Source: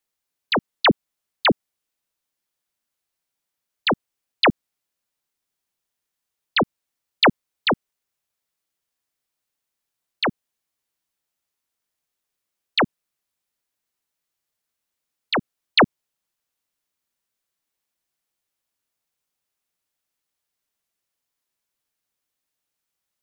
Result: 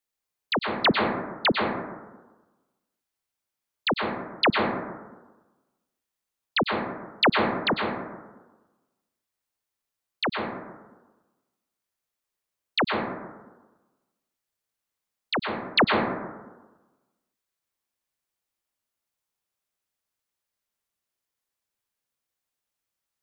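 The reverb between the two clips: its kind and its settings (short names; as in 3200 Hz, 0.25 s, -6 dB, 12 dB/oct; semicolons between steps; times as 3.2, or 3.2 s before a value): plate-style reverb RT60 1.2 s, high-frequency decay 0.3×, pre-delay 90 ms, DRR 1 dB; gain -5 dB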